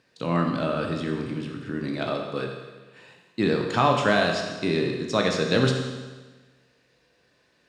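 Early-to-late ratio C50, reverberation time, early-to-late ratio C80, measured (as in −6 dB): 4.5 dB, 1.3 s, 6.0 dB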